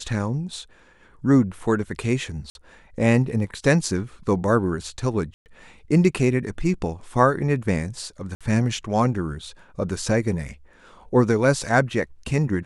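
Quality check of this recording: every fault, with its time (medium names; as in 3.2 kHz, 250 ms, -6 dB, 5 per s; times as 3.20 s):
2.50–2.55 s: dropout 51 ms
5.34–5.46 s: dropout 119 ms
8.35–8.41 s: dropout 56 ms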